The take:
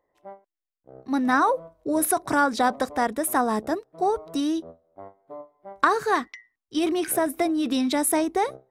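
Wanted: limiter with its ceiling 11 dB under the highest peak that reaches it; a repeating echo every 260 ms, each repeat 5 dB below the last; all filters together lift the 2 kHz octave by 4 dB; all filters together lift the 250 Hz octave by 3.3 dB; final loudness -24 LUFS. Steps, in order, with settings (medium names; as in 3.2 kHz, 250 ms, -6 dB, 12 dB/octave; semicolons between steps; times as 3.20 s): peaking EQ 250 Hz +4 dB; peaking EQ 2 kHz +5.5 dB; peak limiter -15.5 dBFS; feedback delay 260 ms, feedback 56%, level -5 dB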